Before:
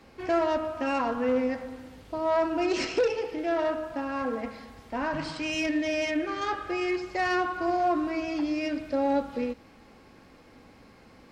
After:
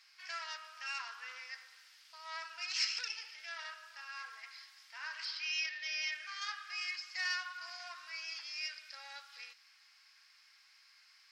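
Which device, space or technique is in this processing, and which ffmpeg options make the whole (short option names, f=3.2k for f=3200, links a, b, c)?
headphones lying on a table: -filter_complex "[0:a]highpass=f=1.5k:w=0.5412,highpass=f=1.5k:w=1.3066,equalizer=f=5.1k:t=o:w=0.5:g=11.5,asettb=1/sr,asplit=3[a][b][c];[a]atrim=end=5.254[d];[b]atrim=start=5.25:end=6.12,asetpts=PTS-STARTPTS,afade=t=in:d=0.004:c=qsin,afade=t=out:st=0.866:d=0.004:c=qsin,lowpass=f=5.2k:w=0.5412,lowpass=f=5.2k:w=1.3066[e];[c]atrim=start=6.116[f];[d][e]acrossfade=d=0.004:c1=hsin:c2=qsin[g];[g][f]acrossfade=d=0.004:c1=qsin:c2=hsin,volume=-5dB"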